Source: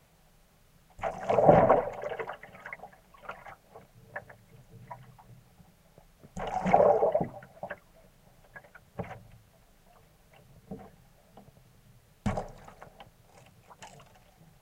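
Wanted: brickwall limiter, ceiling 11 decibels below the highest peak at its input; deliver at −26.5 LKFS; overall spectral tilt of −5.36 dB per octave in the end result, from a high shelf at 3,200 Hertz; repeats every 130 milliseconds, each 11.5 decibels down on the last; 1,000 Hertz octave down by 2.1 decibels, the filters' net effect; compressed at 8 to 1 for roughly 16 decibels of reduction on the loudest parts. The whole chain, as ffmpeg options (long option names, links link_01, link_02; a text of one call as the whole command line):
ffmpeg -i in.wav -af "equalizer=frequency=1000:width_type=o:gain=-3.5,highshelf=frequency=3200:gain=3.5,acompressor=threshold=-31dB:ratio=8,alimiter=level_in=6dB:limit=-24dB:level=0:latency=1,volume=-6dB,aecho=1:1:130|260|390:0.266|0.0718|0.0194,volume=18dB" out.wav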